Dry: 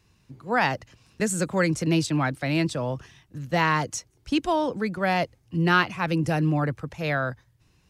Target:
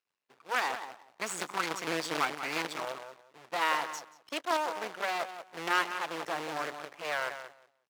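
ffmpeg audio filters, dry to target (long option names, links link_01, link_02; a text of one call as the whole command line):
ffmpeg -i in.wav -filter_complex "[0:a]asettb=1/sr,asplit=3[link_01][link_02][link_03];[link_01]atrim=end=0.734[link_04];[link_02]atrim=start=0.73:end=2.81,asetpts=PTS-STARTPTS,afade=type=in:duration=0.004:curve=qsin,afade=type=out:start_time=2.076:duration=0.004:curve=qsin,aecho=1:1:0.9:0.89,atrim=end_sample=91728[link_05];[link_03]atrim=start=2.806[link_06];[link_04][link_05]acrossfade=duration=0.004:curve1=hsin:curve2=qsin[link_07];[link_07][link_06]acrossfade=duration=0.004:curve1=qsin:curve2=hsin,afftdn=noise_reduction=16:noise_floor=-43,asplit=2[link_08][link_09];[link_09]adelay=181,lowpass=frequency=1400:poles=1,volume=-8.5dB,asplit=2[link_10][link_11];[link_11]adelay=181,lowpass=frequency=1400:poles=1,volume=0.2,asplit=2[link_12][link_13];[link_13]adelay=181,lowpass=frequency=1400:poles=1,volume=0.2[link_14];[link_08][link_10][link_12][link_14]amix=inputs=4:normalize=0,aeval=exprs='max(val(0),0)':channel_layout=same,acrusher=bits=2:mode=log:mix=0:aa=0.000001,highpass=670,aemphasis=mode=reproduction:type=50kf" out.wav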